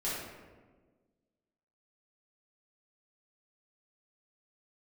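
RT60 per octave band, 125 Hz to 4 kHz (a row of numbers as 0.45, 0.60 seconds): 1.6, 1.8, 1.6, 1.3, 1.1, 0.75 seconds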